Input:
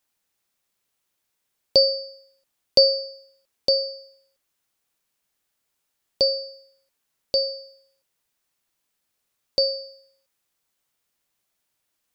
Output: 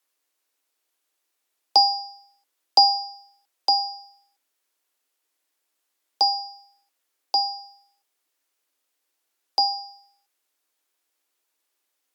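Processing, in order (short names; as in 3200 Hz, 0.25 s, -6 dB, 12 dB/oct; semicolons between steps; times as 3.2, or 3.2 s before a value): frequency shift +260 Hz; Opus 128 kbps 48000 Hz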